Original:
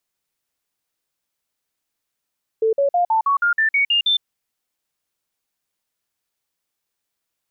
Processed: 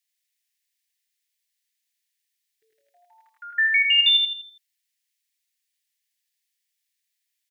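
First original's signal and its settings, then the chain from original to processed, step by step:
stepped sine 444 Hz up, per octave 3, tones 10, 0.11 s, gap 0.05 s -14 dBFS
elliptic high-pass 1.8 kHz, stop band 40 dB; on a send: feedback delay 82 ms, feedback 41%, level -4 dB

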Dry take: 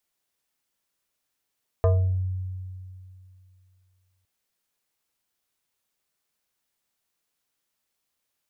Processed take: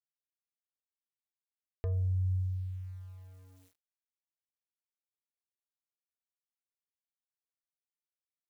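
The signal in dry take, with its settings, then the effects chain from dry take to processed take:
FM tone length 2.41 s, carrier 92.9 Hz, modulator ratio 6.02, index 1.1, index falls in 0.53 s exponential, decay 2.60 s, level -15 dB
high-order bell 870 Hz -12.5 dB; peak limiter -26.5 dBFS; small samples zeroed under -57.5 dBFS

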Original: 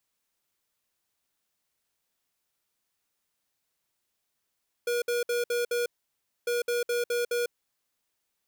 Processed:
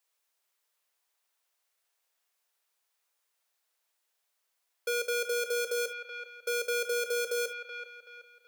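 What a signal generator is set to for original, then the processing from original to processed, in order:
beep pattern square 480 Hz, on 0.15 s, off 0.06 s, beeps 5, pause 0.61 s, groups 2, -27.5 dBFS
high-pass 440 Hz 24 dB/octave; on a send: feedback echo behind a band-pass 378 ms, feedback 37%, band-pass 1.4 kHz, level -5.5 dB; on the sum: gated-style reverb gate 90 ms flat, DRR 9.5 dB

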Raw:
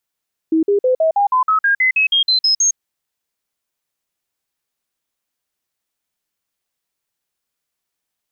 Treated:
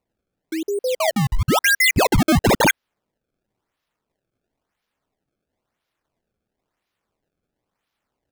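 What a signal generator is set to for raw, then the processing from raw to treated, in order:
stepped sine 321 Hz up, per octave 3, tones 14, 0.11 s, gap 0.05 s -11 dBFS
high-pass 930 Hz 6 dB/octave; decimation with a swept rate 26×, swing 160% 0.98 Hz

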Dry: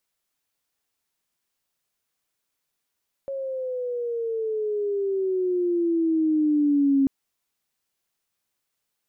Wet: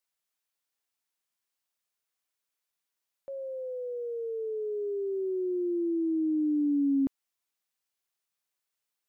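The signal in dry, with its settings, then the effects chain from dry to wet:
sweep logarithmic 550 Hz -> 270 Hz -27.5 dBFS -> -16 dBFS 3.79 s
bass shelf 360 Hz -9 dB; upward expansion 1.5:1, over -37 dBFS

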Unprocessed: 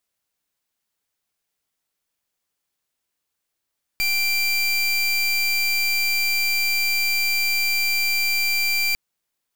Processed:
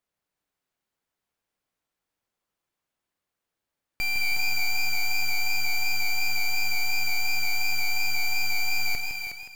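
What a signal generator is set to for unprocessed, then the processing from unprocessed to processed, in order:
pulse 2.36 kHz, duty 28% -21 dBFS 4.95 s
treble shelf 2.7 kHz -11.5 dB; thinning echo 365 ms, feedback 16%, high-pass 210 Hz, level -6.5 dB; modulated delay 160 ms, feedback 45%, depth 77 cents, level -7 dB

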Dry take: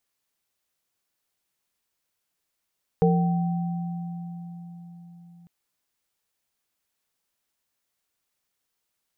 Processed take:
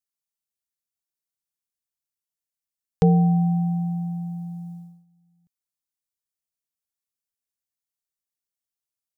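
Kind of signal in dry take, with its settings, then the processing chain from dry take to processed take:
sine partials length 2.45 s, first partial 172 Hz, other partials 458/769 Hz, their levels 1/-8 dB, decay 4.84 s, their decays 0.57/3.26 s, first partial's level -17.5 dB
gate -43 dBFS, range -20 dB; tone controls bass +7 dB, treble +10 dB

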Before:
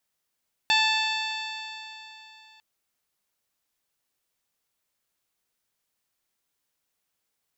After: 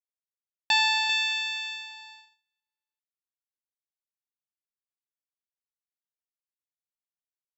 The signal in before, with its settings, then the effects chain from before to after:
stretched partials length 1.90 s, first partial 873 Hz, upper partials -1.5/1/0.5/-2/-14/-19/-14 dB, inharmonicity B 0.0019, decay 3.26 s, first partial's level -24 dB
gate -39 dBFS, range -37 dB; on a send: delay 393 ms -8.5 dB

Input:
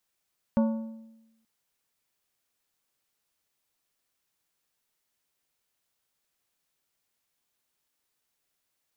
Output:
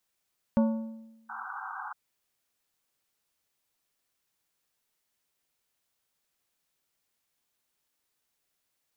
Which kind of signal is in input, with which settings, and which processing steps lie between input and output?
metal hit plate, length 0.88 s, lowest mode 224 Hz, decay 1.00 s, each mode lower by 7.5 dB, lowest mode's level -18.5 dB
painted sound noise, 1.29–1.93 s, 740–1600 Hz -39 dBFS

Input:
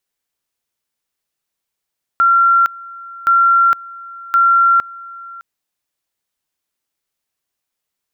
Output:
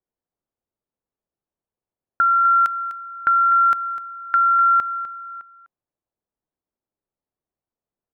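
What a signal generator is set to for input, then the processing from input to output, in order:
two-level tone 1.37 kHz -8 dBFS, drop 22 dB, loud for 0.46 s, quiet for 0.61 s, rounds 3
compression, threshold -15 dBFS; level-controlled noise filter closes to 710 Hz, open at -19 dBFS; delay 251 ms -13 dB

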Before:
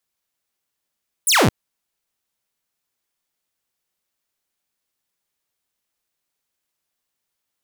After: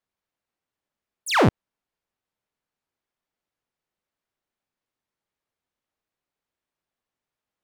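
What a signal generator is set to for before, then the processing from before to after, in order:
laser zap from 11 kHz, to 83 Hz, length 0.22 s saw, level -9.5 dB
low-pass 1.4 kHz 6 dB/octave; warped record 78 rpm, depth 160 cents

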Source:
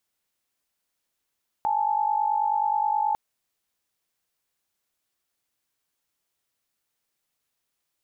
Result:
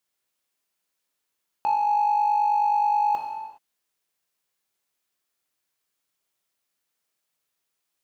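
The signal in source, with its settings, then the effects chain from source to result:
chord G#5/A5 sine, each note -24 dBFS 1.50 s
waveshaping leveller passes 1; bass shelf 130 Hz -9 dB; gated-style reverb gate 440 ms falling, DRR 2 dB

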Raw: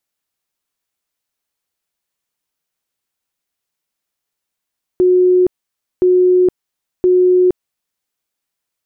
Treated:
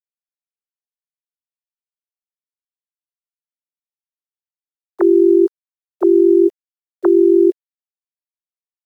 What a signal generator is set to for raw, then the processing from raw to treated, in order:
tone bursts 364 Hz, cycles 170, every 1.02 s, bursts 3, -7.5 dBFS
formants replaced by sine waves; bit crusher 9-bit

